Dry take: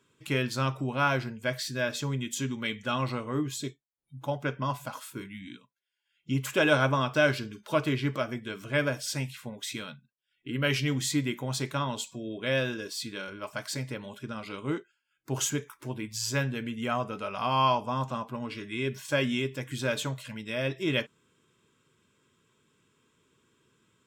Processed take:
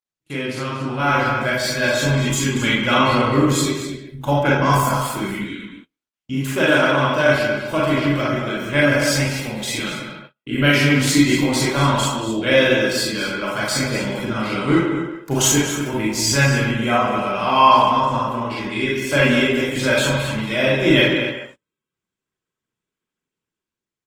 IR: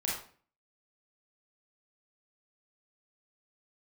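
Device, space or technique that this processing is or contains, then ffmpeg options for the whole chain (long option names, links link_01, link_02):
speakerphone in a meeting room: -filter_complex "[0:a]highpass=frequency=50:poles=1,asettb=1/sr,asplit=3[link_01][link_02][link_03];[link_01]atrim=end=4.494[link_04];[link_02]atrim=start=4.49:end=4.89,asetpts=PTS-STARTPTS,afade=type=in:duration=0.004:curve=qsin,afade=type=out:start_time=0.396:duration=0.004:curve=qsin,highshelf=frequency=4800:width_type=q:width=1.5:gain=6[link_05];[link_03]atrim=start=4.886[link_06];[link_04][link_05]acrossfade=duration=0.004:curve1=hsin:curve2=qsin[link_07];[link_07][link_06]acrossfade=duration=0.004:curve1=qsin:curve2=hsin,asplit=2[link_08][link_09];[link_09]adelay=233.2,volume=-8dB,highshelf=frequency=4000:gain=-5.25[link_10];[link_08][link_10]amix=inputs=2:normalize=0[link_11];[1:a]atrim=start_sample=2205[link_12];[link_11][link_12]afir=irnorm=-1:irlink=0,asplit=2[link_13][link_14];[link_14]adelay=140,highpass=300,lowpass=3400,asoftclip=type=hard:threshold=-14.5dB,volume=-7dB[link_15];[link_13][link_15]amix=inputs=2:normalize=0,dynaudnorm=framelen=350:gausssize=7:maxgain=14dB,agate=range=-33dB:threshold=-39dB:ratio=16:detection=peak,volume=-1dB" -ar 48000 -c:a libopus -b:a 20k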